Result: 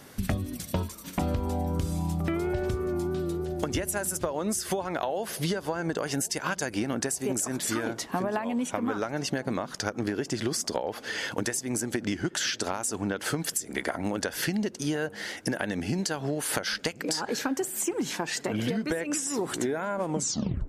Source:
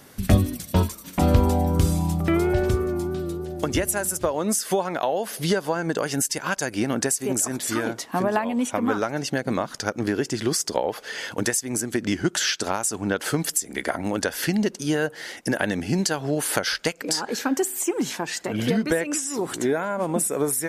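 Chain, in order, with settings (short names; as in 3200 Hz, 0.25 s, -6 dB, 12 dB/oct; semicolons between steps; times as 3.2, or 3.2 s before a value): tape stop at the end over 0.59 s; high shelf 11000 Hz -4.5 dB; compressor 10:1, threshold -25 dBFS, peak gain reduction 14.5 dB; darkening echo 1.068 s, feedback 71%, low-pass 900 Hz, level -21.5 dB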